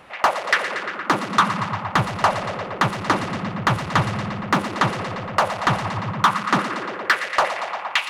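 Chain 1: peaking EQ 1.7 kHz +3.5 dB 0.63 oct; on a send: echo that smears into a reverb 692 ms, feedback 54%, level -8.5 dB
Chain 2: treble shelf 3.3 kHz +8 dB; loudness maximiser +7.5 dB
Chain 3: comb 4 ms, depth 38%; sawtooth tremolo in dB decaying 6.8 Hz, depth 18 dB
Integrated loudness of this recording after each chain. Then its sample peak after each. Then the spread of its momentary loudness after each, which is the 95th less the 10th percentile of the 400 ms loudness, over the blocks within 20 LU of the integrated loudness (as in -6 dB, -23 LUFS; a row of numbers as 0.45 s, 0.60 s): -20.0 LUFS, -15.0 LUFS, -28.0 LUFS; -4.5 dBFS, -1.0 dBFS, -5.5 dBFS; 6 LU, 5 LU, 7 LU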